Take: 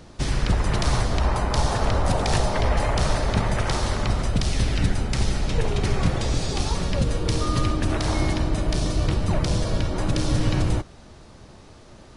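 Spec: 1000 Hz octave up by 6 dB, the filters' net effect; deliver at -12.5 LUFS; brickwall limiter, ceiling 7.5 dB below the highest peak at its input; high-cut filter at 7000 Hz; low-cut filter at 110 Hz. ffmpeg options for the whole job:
-af "highpass=110,lowpass=7k,equalizer=f=1k:t=o:g=7.5,volume=13.5dB,alimiter=limit=-2dB:level=0:latency=1"

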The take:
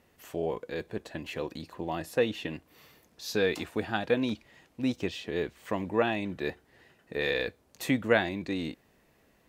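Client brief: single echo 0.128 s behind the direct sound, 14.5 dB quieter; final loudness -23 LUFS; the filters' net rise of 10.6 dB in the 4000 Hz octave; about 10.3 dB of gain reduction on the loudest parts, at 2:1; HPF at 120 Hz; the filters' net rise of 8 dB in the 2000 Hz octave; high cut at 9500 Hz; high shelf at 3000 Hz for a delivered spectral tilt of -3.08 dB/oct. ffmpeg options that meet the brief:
-af "highpass=120,lowpass=9.5k,equalizer=f=2k:t=o:g=6,highshelf=f=3k:g=7.5,equalizer=f=4k:t=o:g=5.5,acompressor=threshold=-34dB:ratio=2,aecho=1:1:128:0.188,volume=11.5dB"

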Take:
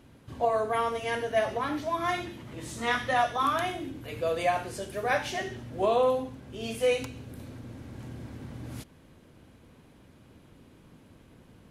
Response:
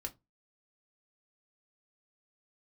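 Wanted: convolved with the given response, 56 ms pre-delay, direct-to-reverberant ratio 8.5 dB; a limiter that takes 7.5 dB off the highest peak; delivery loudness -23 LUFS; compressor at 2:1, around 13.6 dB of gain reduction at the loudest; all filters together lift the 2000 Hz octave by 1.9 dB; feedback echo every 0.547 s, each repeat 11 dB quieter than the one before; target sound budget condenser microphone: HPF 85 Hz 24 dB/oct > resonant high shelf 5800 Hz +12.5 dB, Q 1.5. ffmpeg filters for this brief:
-filter_complex "[0:a]equalizer=f=2k:t=o:g=3.5,acompressor=threshold=-46dB:ratio=2,alimiter=level_in=9.5dB:limit=-24dB:level=0:latency=1,volume=-9.5dB,aecho=1:1:547|1094|1641:0.282|0.0789|0.0221,asplit=2[a][b];[1:a]atrim=start_sample=2205,adelay=56[c];[b][c]afir=irnorm=-1:irlink=0,volume=-7dB[d];[a][d]amix=inputs=2:normalize=0,highpass=f=85:w=0.5412,highpass=f=85:w=1.3066,highshelf=f=5.8k:t=q:w=1.5:g=12.5,volume=18.5dB"

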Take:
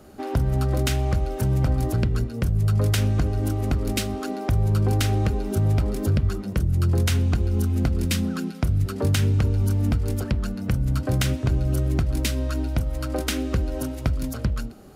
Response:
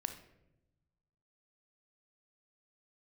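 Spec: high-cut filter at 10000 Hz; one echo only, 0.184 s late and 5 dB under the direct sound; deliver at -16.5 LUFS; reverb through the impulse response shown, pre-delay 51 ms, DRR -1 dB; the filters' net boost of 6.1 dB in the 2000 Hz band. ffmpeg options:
-filter_complex "[0:a]lowpass=10k,equalizer=f=2k:t=o:g=8,aecho=1:1:184:0.562,asplit=2[a][b];[1:a]atrim=start_sample=2205,adelay=51[c];[b][c]afir=irnorm=-1:irlink=0,volume=1.5dB[d];[a][d]amix=inputs=2:normalize=0"

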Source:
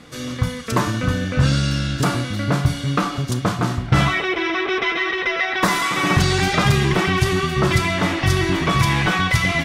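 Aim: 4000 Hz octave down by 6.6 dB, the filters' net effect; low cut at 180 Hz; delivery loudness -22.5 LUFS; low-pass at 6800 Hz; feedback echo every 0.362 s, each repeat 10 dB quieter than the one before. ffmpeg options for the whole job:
-af "highpass=180,lowpass=6.8k,equalizer=f=4k:t=o:g=-8.5,aecho=1:1:362|724|1086|1448:0.316|0.101|0.0324|0.0104,volume=-1dB"

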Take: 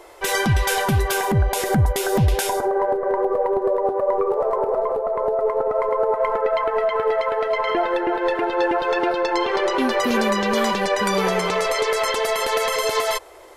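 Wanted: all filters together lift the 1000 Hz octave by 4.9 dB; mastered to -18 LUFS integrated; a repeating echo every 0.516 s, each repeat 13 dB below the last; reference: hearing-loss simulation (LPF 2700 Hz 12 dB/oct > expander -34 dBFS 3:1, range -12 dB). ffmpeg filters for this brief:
-af "lowpass=2.7k,equalizer=f=1k:t=o:g=6,aecho=1:1:516|1032|1548:0.224|0.0493|0.0108,agate=range=-12dB:threshold=-34dB:ratio=3,volume=1dB"

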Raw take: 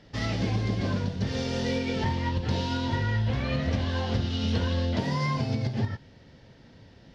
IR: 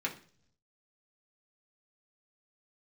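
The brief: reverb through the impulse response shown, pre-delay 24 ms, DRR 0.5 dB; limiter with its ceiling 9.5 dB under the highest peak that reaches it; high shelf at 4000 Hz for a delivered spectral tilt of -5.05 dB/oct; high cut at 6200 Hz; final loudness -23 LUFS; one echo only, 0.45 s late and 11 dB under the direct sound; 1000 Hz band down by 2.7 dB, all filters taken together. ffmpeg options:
-filter_complex "[0:a]lowpass=6.2k,equalizer=f=1k:t=o:g=-3.5,highshelf=f=4k:g=6.5,alimiter=limit=-24dB:level=0:latency=1,aecho=1:1:450:0.282,asplit=2[a][b];[1:a]atrim=start_sample=2205,adelay=24[c];[b][c]afir=irnorm=-1:irlink=0,volume=-5dB[d];[a][d]amix=inputs=2:normalize=0,volume=8dB"

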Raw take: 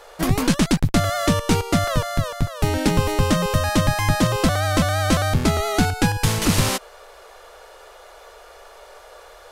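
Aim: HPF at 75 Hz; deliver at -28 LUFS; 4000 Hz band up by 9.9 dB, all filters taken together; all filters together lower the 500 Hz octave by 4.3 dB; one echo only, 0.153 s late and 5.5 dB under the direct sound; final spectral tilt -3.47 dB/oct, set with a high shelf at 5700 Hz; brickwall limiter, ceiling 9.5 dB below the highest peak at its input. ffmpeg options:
-af "highpass=75,equalizer=f=500:t=o:g=-6,equalizer=f=4k:t=o:g=9,highshelf=f=5.7k:g=8.5,alimiter=limit=-10.5dB:level=0:latency=1,aecho=1:1:153:0.531,volume=-8dB"

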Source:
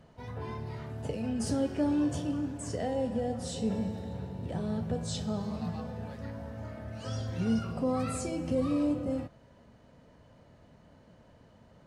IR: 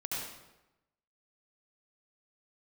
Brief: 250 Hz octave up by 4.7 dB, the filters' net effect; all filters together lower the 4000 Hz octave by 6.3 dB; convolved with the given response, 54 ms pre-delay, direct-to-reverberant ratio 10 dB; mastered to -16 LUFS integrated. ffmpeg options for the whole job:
-filter_complex "[0:a]equalizer=f=250:t=o:g=5.5,equalizer=f=4k:t=o:g=-8.5,asplit=2[a][b];[1:a]atrim=start_sample=2205,adelay=54[c];[b][c]afir=irnorm=-1:irlink=0,volume=-13.5dB[d];[a][d]amix=inputs=2:normalize=0,volume=13.5dB"

